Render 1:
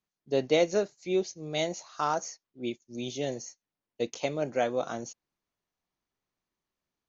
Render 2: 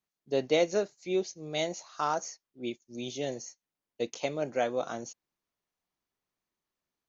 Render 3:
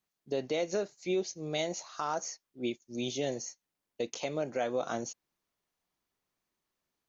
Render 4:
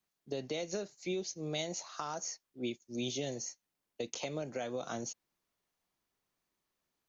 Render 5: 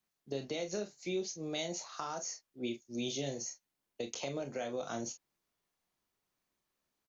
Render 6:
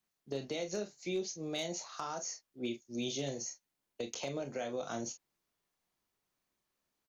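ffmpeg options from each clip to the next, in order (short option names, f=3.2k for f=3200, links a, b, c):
-af "lowshelf=f=180:g=-4,volume=-1dB"
-af "alimiter=level_in=1.5dB:limit=-24dB:level=0:latency=1:release=159,volume=-1.5dB,volume=3dB"
-filter_complex "[0:a]acrossover=split=210|3000[a][b][c];[b]acompressor=threshold=-37dB:ratio=4[d];[a][d][c]amix=inputs=3:normalize=0"
-af "aecho=1:1:29|43:0.335|0.282,volume=-1dB"
-af "asoftclip=type=hard:threshold=-28dB"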